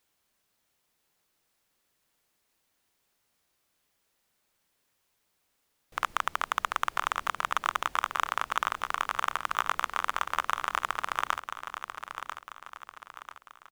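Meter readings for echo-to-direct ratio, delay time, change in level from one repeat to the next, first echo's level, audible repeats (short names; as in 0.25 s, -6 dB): -8.0 dB, 0.992 s, -7.0 dB, -9.0 dB, 4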